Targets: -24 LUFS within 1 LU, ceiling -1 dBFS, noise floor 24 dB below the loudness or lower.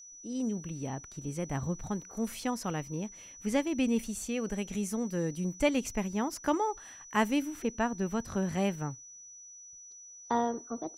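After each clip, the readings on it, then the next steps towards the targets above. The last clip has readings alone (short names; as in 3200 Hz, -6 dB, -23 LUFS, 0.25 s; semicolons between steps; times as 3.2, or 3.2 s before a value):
steady tone 5900 Hz; tone level -48 dBFS; loudness -33.0 LUFS; peak -13.5 dBFS; loudness target -24.0 LUFS
-> notch 5900 Hz, Q 30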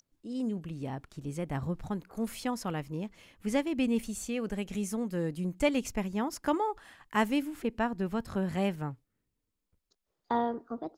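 steady tone none; loudness -33.5 LUFS; peak -13.5 dBFS; loudness target -24.0 LUFS
-> gain +9.5 dB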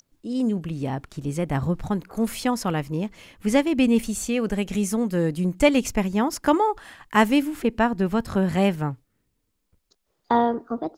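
loudness -24.0 LUFS; peak -4.0 dBFS; noise floor -74 dBFS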